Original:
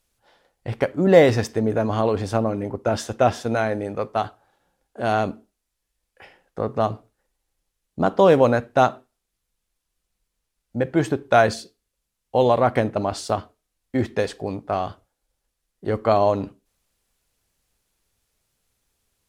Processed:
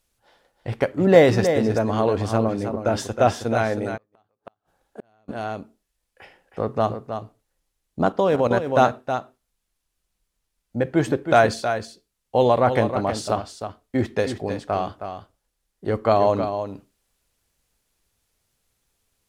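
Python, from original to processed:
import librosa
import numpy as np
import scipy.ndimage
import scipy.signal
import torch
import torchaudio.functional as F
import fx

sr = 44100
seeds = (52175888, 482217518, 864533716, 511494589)

y = x + 10.0 ** (-8.5 / 20.0) * np.pad(x, (int(317 * sr / 1000.0), 0))[:len(x)]
y = fx.gate_flip(y, sr, shuts_db=-23.0, range_db=-41, at=(3.96, 5.28), fade=0.02)
y = fx.level_steps(y, sr, step_db=9, at=(8.12, 8.67))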